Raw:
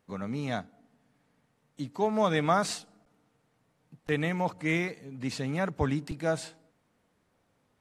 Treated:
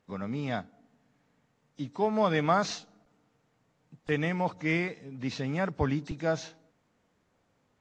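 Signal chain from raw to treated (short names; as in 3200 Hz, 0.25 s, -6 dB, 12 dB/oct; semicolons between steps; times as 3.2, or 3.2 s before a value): nonlinear frequency compression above 3300 Hz 1.5:1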